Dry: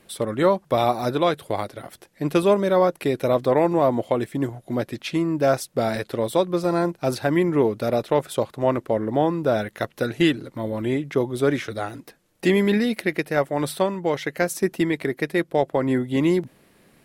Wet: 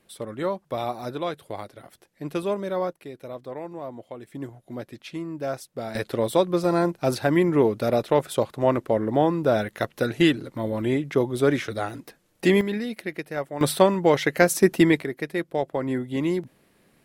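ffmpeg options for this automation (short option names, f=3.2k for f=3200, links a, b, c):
-af "asetnsamples=n=441:p=0,asendcmd='2.93 volume volume -16.5dB;4.27 volume volume -10dB;5.95 volume volume 0dB;12.61 volume volume -8dB;13.61 volume volume 4.5dB;15.01 volume volume -5dB',volume=-8.5dB"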